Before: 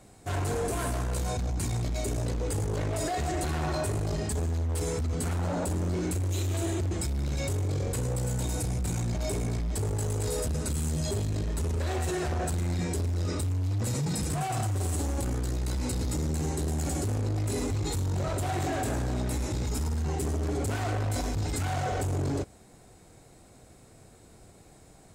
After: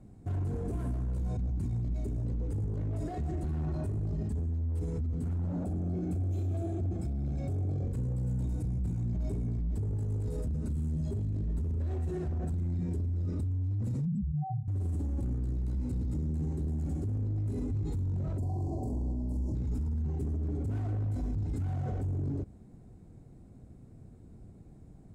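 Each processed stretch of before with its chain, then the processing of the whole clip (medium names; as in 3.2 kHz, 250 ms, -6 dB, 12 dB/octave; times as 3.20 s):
5.64–7.85 s: peaking EQ 710 Hz +11.5 dB 0.37 oct + comb of notches 950 Hz
14.05–14.68 s: spectral contrast enhancement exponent 3.7 + high-pass 50 Hz + comb 5.1 ms, depth 94%
18.38–19.55 s: brick-wall FIR band-stop 1.1–4.1 kHz + doubling 45 ms -2.5 dB
whole clip: FFT filter 230 Hz 0 dB, 530 Hz -13 dB, 4.3 kHz -25 dB; peak limiter -31.5 dBFS; trim +4.5 dB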